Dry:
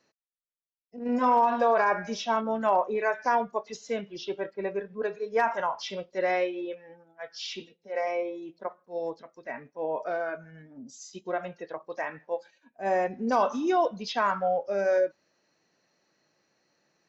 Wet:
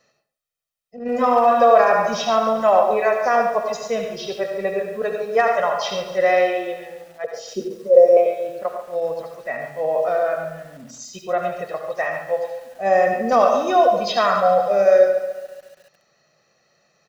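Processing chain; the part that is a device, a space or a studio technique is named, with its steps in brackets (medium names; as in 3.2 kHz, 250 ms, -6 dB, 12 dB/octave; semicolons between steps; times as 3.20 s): 7.24–8.17 s: FFT filter 150 Hz 0 dB, 220 Hz +11 dB, 360 Hz +13 dB, 550 Hz +12 dB, 820 Hz -14 dB, 1.4 kHz -24 dB, 3.7 kHz -17 dB, 9.9 kHz +10 dB; microphone above a desk (comb 1.6 ms, depth 68%; reverberation RT60 0.45 s, pre-delay 68 ms, DRR 4 dB); bit-crushed delay 141 ms, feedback 55%, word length 8-bit, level -12 dB; trim +6 dB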